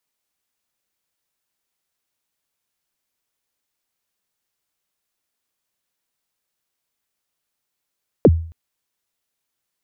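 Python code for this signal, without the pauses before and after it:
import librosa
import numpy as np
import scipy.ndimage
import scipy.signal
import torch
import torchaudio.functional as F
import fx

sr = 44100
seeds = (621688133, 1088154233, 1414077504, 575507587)

y = fx.drum_kick(sr, seeds[0], length_s=0.27, level_db=-4, start_hz=580.0, end_hz=82.0, sweep_ms=45.0, decay_s=0.47, click=False)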